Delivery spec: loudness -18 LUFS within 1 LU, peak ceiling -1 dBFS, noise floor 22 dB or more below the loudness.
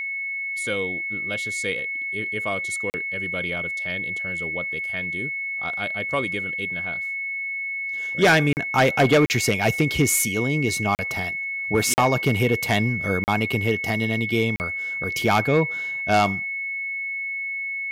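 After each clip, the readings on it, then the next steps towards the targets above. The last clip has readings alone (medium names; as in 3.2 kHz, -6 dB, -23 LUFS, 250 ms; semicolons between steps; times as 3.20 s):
dropouts 7; longest dropout 39 ms; steady tone 2.2 kHz; tone level -26 dBFS; loudness -23.0 LUFS; peak level -7.5 dBFS; loudness target -18.0 LUFS
-> interpolate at 2.90/8.53/9.26/10.95/11.94/13.24/14.56 s, 39 ms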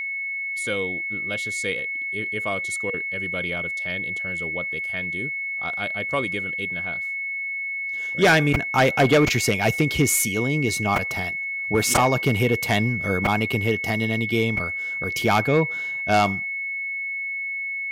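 dropouts 0; steady tone 2.2 kHz; tone level -26 dBFS
-> band-stop 2.2 kHz, Q 30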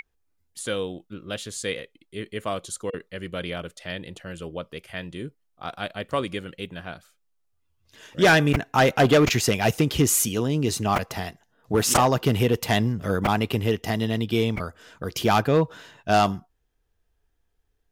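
steady tone not found; loudness -23.5 LUFS; peak level -5.0 dBFS; loudness target -18.0 LUFS
-> trim +5.5 dB; peak limiter -1 dBFS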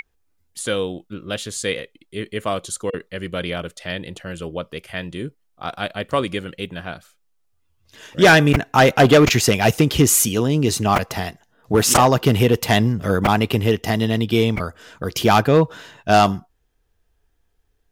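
loudness -18.0 LUFS; peak level -1.0 dBFS; noise floor -65 dBFS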